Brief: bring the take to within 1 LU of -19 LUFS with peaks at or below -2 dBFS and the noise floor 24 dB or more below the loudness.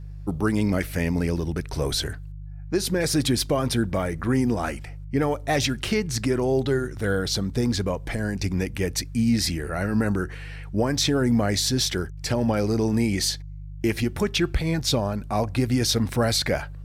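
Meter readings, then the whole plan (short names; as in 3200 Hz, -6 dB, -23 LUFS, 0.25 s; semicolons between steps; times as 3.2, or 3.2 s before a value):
hum 50 Hz; harmonics up to 150 Hz; hum level -34 dBFS; loudness -24.5 LUFS; peak -11.0 dBFS; loudness target -19.0 LUFS
-> de-hum 50 Hz, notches 3; gain +5.5 dB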